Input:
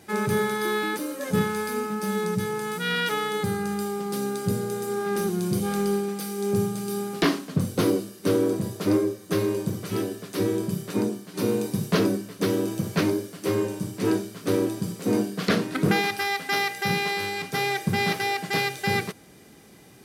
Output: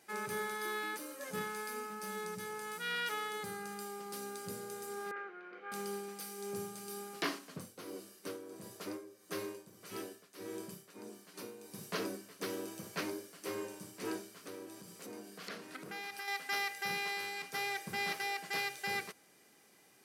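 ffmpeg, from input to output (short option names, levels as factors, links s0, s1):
-filter_complex "[0:a]asettb=1/sr,asplit=3[s0][s1][s2];[s0]atrim=end=5.114[s3];[s1]atrim=start=5.11:end=5.72,asetpts=PTS-STARTPTS,afade=t=in:d=0.004:c=qsin,afade=t=out:st=0.606:d=0.004:c=qsin,highpass=f=390:w=0.5412,highpass=f=390:w=1.3066,equalizer=f=390:t=q:w=4:g=-4,equalizer=f=610:t=q:w=4:g=-5,equalizer=f=960:t=q:w=4:g=-9,equalizer=f=1400:t=q:w=4:g=9,equalizer=f=2100:t=q:w=4:g=4,lowpass=f=2300:w=0.5412,lowpass=f=2300:w=1.3066[s4];[s2]atrim=start=5.716[s5];[s3][s4]acrossfade=d=0.004:c1=hsin:c2=qsin[s6];[s6][s5]acrossfade=d=0.004:c1=qsin:c2=hsin,asplit=3[s7][s8][s9];[s7]afade=t=out:st=7.38:d=0.02[s10];[s8]tremolo=f=1.6:d=0.73,afade=t=in:st=7.38:d=0.02,afade=t=out:st=11.98:d=0.02[s11];[s9]afade=t=in:st=11.98:d=0.02[s12];[s10][s11][s12]amix=inputs=3:normalize=0,asettb=1/sr,asplit=3[s13][s14][s15];[s13]atrim=end=14.384[s16];[s14]atrim=start=14.38:end=16.28,asetpts=PTS-STARTPTS,afade=t=in:d=0.004:c=qsin,afade=t=out:st=1.896:d=0.004:c=qsin,acompressor=threshold=0.0282:ratio=2.5:attack=3.2:release=140:knee=1:detection=peak[s17];[s15]atrim=start=16.276[s18];[s16][s17]acrossfade=d=0.004:c1=hsin:c2=qsin[s19];[s19][s18]acrossfade=d=0.004:c1=qsin:c2=hsin,highpass=f=790:p=1,equalizer=f=3600:t=o:w=0.29:g=-4,volume=0.355"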